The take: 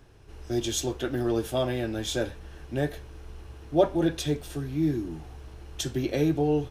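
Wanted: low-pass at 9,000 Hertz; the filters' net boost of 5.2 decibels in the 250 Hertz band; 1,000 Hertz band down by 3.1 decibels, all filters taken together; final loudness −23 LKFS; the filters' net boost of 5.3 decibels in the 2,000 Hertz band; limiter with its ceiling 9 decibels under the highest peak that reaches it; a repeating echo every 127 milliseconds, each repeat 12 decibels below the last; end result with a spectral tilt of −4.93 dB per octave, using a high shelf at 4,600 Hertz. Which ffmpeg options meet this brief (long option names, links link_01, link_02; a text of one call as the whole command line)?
ffmpeg -i in.wav -af "lowpass=9000,equalizer=frequency=250:width_type=o:gain=8,equalizer=frequency=1000:width_type=o:gain=-8,equalizer=frequency=2000:width_type=o:gain=8,highshelf=frequency=4600:gain=8.5,alimiter=limit=-16.5dB:level=0:latency=1,aecho=1:1:127|254|381:0.251|0.0628|0.0157,volume=4dB" out.wav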